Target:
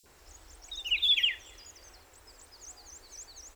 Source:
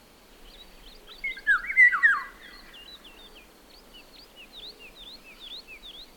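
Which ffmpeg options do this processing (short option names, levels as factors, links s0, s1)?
-filter_complex "[0:a]acrossover=split=390|2200[s0][s1][s2];[s0]adelay=60[s3];[s1]adelay=100[s4];[s3][s4][s2]amix=inputs=3:normalize=0,asetrate=76440,aresample=44100,volume=0.668"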